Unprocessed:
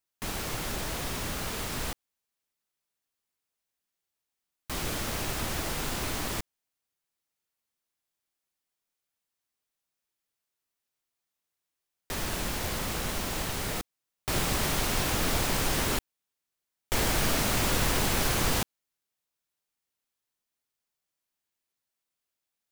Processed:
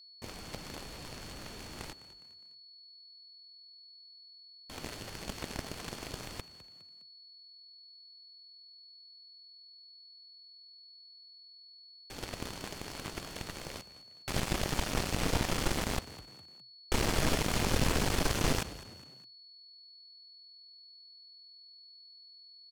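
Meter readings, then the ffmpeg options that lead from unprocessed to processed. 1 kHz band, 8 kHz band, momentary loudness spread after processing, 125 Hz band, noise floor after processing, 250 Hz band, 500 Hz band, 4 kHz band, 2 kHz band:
-5.5 dB, -7.5 dB, 22 LU, -3.0 dB, -56 dBFS, -3.0 dB, -3.5 dB, -5.0 dB, -6.0 dB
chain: -filter_complex "[0:a]aemphasis=mode=reproduction:type=50fm,aeval=exprs='0.2*(cos(1*acos(clip(val(0)/0.2,-1,1)))-cos(1*PI/2))+0.02*(cos(5*acos(clip(val(0)/0.2,-1,1)))-cos(5*PI/2))+0.0562*(cos(7*acos(clip(val(0)/0.2,-1,1)))-cos(7*PI/2))':c=same,equalizer=f=1400:w=0.48:g=-5.5,asplit=2[s0][s1];[s1]alimiter=level_in=1.06:limit=0.0631:level=0:latency=1,volume=0.944,volume=0.708[s2];[s0][s2]amix=inputs=2:normalize=0,aeval=exprs='val(0)+0.00316*sin(2*PI*4400*n/s)':c=same,bandreject=f=3800:w=27,asplit=4[s3][s4][s5][s6];[s4]adelay=205,afreqshift=41,volume=0.15[s7];[s5]adelay=410,afreqshift=82,volume=0.0596[s8];[s6]adelay=615,afreqshift=123,volume=0.024[s9];[s3][s7][s8][s9]amix=inputs=4:normalize=0,volume=0.75"

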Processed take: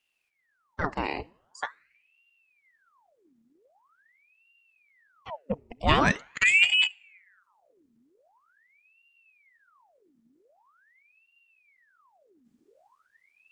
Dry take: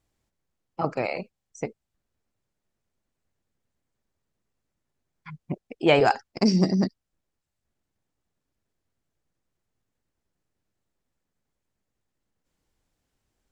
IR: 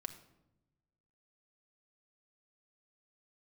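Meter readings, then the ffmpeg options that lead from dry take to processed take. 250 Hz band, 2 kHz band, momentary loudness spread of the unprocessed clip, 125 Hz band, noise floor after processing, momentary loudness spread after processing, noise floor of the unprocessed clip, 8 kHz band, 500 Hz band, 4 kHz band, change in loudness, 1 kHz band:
-9.0 dB, +9.0 dB, 17 LU, -5.0 dB, -74 dBFS, 20 LU, -83 dBFS, +5.5 dB, -9.0 dB, +7.5 dB, -0.5 dB, -1.0 dB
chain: -filter_complex "[0:a]asubboost=boost=7:cutoff=110,asplit=2[s0][s1];[1:a]atrim=start_sample=2205,asetrate=41895,aresample=44100,lowshelf=f=370:g=-8[s2];[s1][s2]afir=irnorm=-1:irlink=0,volume=0.266[s3];[s0][s3]amix=inputs=2:normalize=0,aeval=exprs='val(0)*sin(2*PI*1500*n/s+1500*0.85/0.44*sin(2*PI*0.44*n/s))':c=same"

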